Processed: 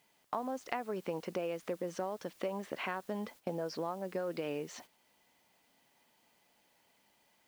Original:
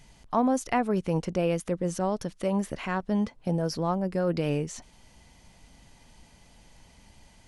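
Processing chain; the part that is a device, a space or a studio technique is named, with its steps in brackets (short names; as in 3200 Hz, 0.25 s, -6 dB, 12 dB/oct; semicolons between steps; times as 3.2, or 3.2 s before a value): baby monitor (BPF 330–4000 Hz; compressor 10:1, threshold -34 dBFS, peak gain reduction 14.5 dB; white noise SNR 23 dB; gate -54 dBFS, range -12 dB); gain +1 dB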